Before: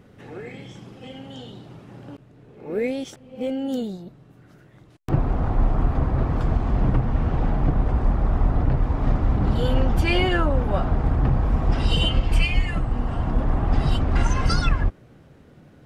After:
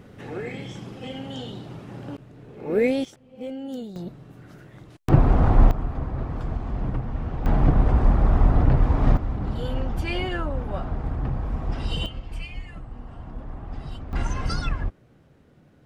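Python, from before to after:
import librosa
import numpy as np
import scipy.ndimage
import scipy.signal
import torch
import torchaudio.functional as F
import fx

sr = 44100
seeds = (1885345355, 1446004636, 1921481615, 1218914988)

y = fx.gain(x, sr, db=fx.steps((0.0, 4.0), (3.05, -7.0), (3.96, 5.0), (5.71, -7.0), (7.46, 2.5), (9.17, -7.0), (12.06, -14.5), (14.13, -6.0)))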